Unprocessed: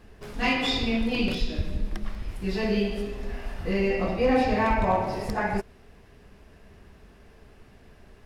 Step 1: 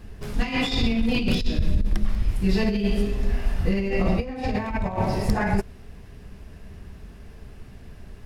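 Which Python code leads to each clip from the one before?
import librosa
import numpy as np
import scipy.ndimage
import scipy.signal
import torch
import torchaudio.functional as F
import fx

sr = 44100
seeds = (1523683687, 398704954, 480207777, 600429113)

y = fx.high_shelf(x, sr, hz=4200.0, db=6.5)
y = fx.over_compress(y, sr, threshold_db=-26.0, ratio=-0.5)
y = fx.bass_treble(y, sr, bass_db=9, treble_db=-1)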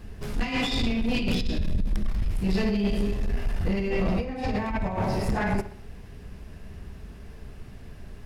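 y = 10.0 ** (-19.5 / 20.0) * np.tanh(x / 10.0 ** (-19.5 / 20.0))
y = fx.echo_wet_lowpass(y, sr, ms=64, feedback_pct=45, hz=3900.0, wet_db=-13.5)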